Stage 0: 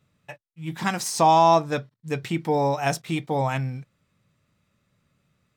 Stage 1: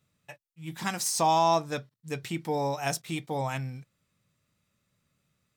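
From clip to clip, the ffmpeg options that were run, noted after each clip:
-af "highshelf=f=4.3k:g=9.5,volume=-7dB"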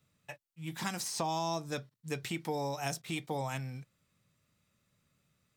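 -filter_complex "[0:a]acrossover=split=400|4100[a][b][c];[a]acompressor=threshold=-38dB:ratio=4[d];[b]acompressor=threshold=-36dB:ratio=4[e];[c]acompressor=threshold=-41dB:ratio=4[f];[d][e][f]amix=inputs=3:normalize=0"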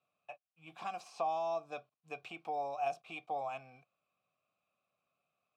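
-filter_complex "[0:a]asplit=3[a][b][c];[a]bandpass=f=730:t=q:w=8,volume=0dB[d];[b]bandpass=f=1.09k:t=q:w=8,volume=-6dB[e];[c]bandpass=f=2.44k:t=q:w=8,volume=-9dB[f];[d][e][f]amix=inputs=3:normalize=0,volume=7dB"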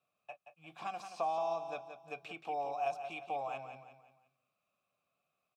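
-af "aecho=1:1:176|352|528|704:0.355|0.142|0.0568|0.0227"

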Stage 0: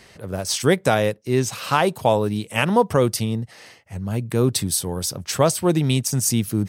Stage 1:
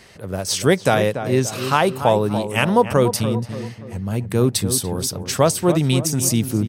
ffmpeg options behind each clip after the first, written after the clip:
-filter_complex "[0:a]asplit=2[a][b];[b]adelay=288,lowpass=f=1.5k:p=1,volume=-9dB,asplit=2[c][d];[d]adelay=288,lowpass=f=1.5k:p=1,volume=0.46,asplit=2[e][f];[f]adelay=288,lowpass=f=1.5k:p=1,volume=0.46,asplit=2[g][h];[h]adelay=288,lowpass=f=1.5k:p=1,volume=0.46,asplit=2[i][j];[j]adelay=288,lowpass=f=1.5k:p=1,volume=0.46[k];[a][c][e][g][i][k]amix=inputs=6:normalize=0,volume=1.5dB"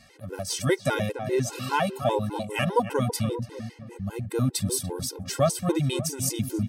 -af "areverse,acompressor=mode=upward:threshold=-38dB:ratio=2.5,areverse,afftfilt=real='re*gt(sin(2*PI*5*pts/sr)*(1-2*mod(floor(b*sr/1024/270),2)),0)':imag='im*gt(sin(2*PI*5*pts/sr)*(1-2*mod(floor(b*sr/1024/270),2)),0)':win_size=1024:overlap=0.75,volume=-4.5dB"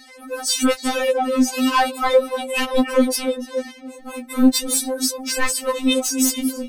-af "aeval=exprs='0.335*sin(PI/2*2.82*val(0)/0.335)':c=same,afftfilt=real='re*3.46*eq(mod(b,12),0)':imag='im*3.46*eq(mod(b,12),0)':win_size=2048:overlap=0.75"

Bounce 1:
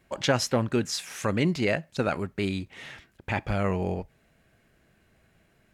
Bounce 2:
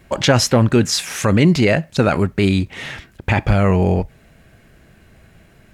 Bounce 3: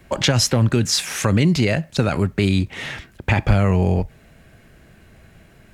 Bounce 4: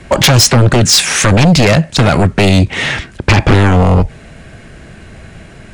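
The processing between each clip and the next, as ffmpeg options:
-filter_complex "[0:a]asplit=2[a][b];[b]alimiter=limit=-22dB:level=0:latency=1:release=17,volume=3dB[c];[a][c]amix=inputs=2:normalize=0,lowshelf=f=160:g=6,volume=5dB"
-filter_complex "[0:a]acrossover=split=160|3000[a][b][c];[b]acompressor=threshold=-18dB:ratio=6[d];[a][d][c]amix=inputs=3:normalize=0"
-af "aresample=22050,aresample=44100,aeval=exprs='0.891*sin(PI/2*4.47*val(0)/0.891)':c=same,volume=-2.5dB"

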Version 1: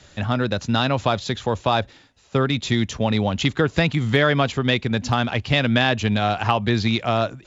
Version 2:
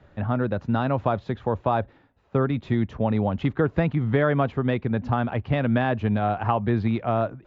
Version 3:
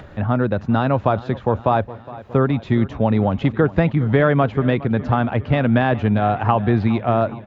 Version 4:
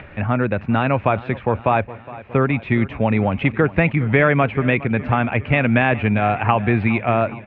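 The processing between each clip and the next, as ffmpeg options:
-af "lowpass=1.3k,volume=-2dB"
-af "acompressor=mode=upward:threshold=-37dB:ratio=2.5,aecho=1:1:413|826|1239|1652|2065:0.126|0.0743|0.0438|0.0259|0.0153,volume=5.5dB"
-af "lowpass=f=2.4k:t=q:w=5.2,volume=-1dB"

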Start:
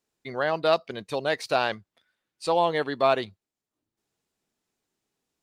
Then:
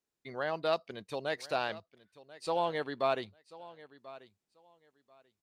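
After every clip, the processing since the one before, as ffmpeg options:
-af "aecho=1:1:1038|2076:0.119|0.0226,volume=-8.5dB"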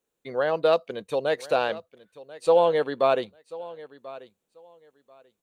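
-af "equalizer=f=100:t=o:w=0.33:g=-11,equalizer=f=500:t=o:w=0.33:g=10,equalizer=f=2k:t=o:w=0.33:g=-4,equalizer=f=5k:t=o:w=0.33:g=-10,volume=7dB"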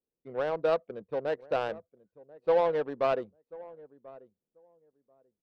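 -filter_complex "[0:a]adynamicsmooth=sensitivity=1:basefreq=570,bandreject=f=6.9k:w=10,acrossover=split=4800[a][b];[b]acompressor=threshold=-57dB:ratio=4:attack=1:release=60[c];[a][c]amix=inputs=2:normalize=0,volume=-5.5dB"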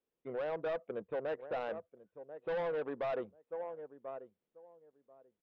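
-filter_complex "[0:a]aresample=8000,asoftclip=type=tanh:threshold=-29dB,aresample=44100,asplit=2[a][b];[b]highpass=f=720:p=1,volume=7dB,asoftclip=type=tanh:threshold=-27dB[c];[a][c]amix=inputs=2:normalize=0,lowpass=f=2k:p=1,volume=-6dB,alimiter=level_in=10.5dB:limit=-24dB:level=0:latency=1:release=125,volume=-10.5dB,volume=3.5dB"

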